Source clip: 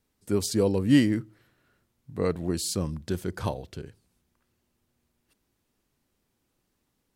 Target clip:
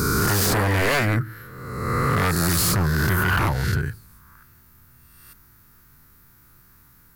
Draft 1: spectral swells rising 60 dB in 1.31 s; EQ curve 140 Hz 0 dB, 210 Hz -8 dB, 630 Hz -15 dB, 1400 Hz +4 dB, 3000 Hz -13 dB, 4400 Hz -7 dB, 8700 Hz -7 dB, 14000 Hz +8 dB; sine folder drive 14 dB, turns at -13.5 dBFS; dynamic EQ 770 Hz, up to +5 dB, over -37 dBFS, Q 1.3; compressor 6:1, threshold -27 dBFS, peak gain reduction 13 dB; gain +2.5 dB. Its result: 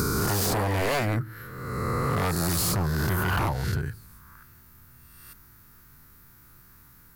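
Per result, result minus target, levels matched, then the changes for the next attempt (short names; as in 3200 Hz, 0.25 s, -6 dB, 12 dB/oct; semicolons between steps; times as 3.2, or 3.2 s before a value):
compressor: peak gain reduction +5 dB; 2000 Hz band -2.5 dB
change: compressor 6:1, threshold -21 dBFS, peak gain reduction 8 dB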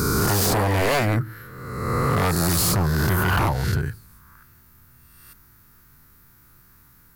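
2000 Hz band -3.0 dB
change: dynamic EQ 1600 Hz, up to +5 dB, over -37 dBFS, Q 1.3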